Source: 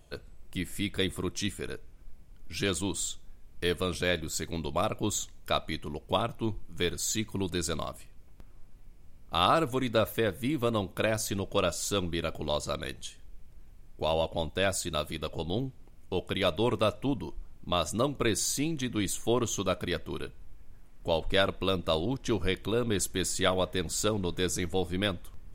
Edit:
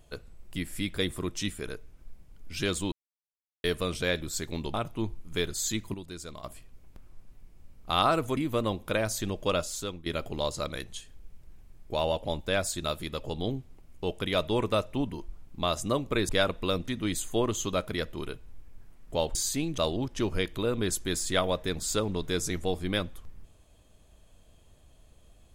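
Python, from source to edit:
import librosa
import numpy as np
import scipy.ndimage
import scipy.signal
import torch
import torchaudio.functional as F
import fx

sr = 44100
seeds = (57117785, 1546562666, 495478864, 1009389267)

y = fx.edit(x, sr, fx.silence(start_s=2.92, length_s=0.72),
    fx.cut(start_s=4.74, length_s=1.44),
    fx.clip_gain(start_s=7.38, length_s=0.5, db=-10.0),
    fx.cut(start_s=9.81, length_s=0.65),
    fx.fade_out_to(start_s=11.68, length_s=0.47, floor_db=-16.0),
    fx.swap(start_s=18.38, length_s=0.43, other_s=21.28, other_length_s=0.59), tone=tone)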